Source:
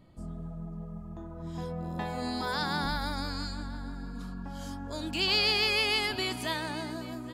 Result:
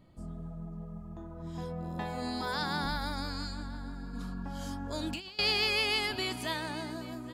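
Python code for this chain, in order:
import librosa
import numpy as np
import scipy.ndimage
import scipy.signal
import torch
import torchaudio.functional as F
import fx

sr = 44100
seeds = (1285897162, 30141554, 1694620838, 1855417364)

y = fx.over_compress(x, sr, threshold_db=-34.0, ratio=-0.5, at=(4.13, 5.39))
y = F.gain(torch.from_numpy(y), -2.0).numpy()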